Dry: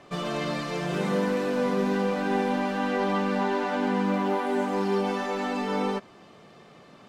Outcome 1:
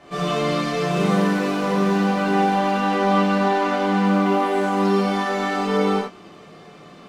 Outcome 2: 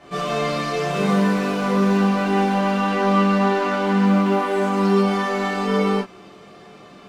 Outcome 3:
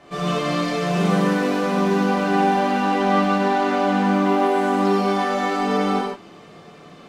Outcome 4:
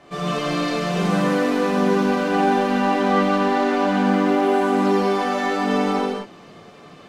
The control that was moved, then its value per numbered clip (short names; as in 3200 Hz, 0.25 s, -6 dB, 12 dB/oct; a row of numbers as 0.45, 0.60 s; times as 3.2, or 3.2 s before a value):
non-linear reverb, gate: 120, 80, 190, 280 ms